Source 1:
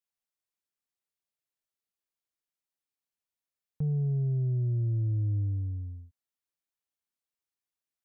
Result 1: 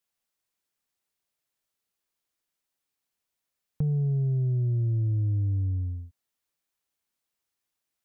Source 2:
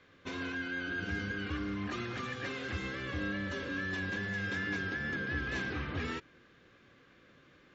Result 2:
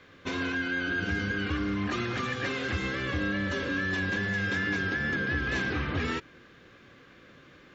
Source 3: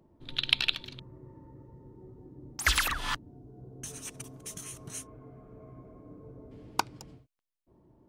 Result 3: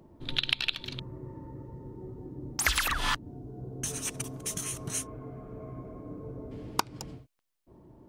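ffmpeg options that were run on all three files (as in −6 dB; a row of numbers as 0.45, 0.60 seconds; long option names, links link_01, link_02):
-af "acompressor=threshold=-32dB:ratio=5,volume=7.5dB"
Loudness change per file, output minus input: +2.5, +6.5, −1.5 LU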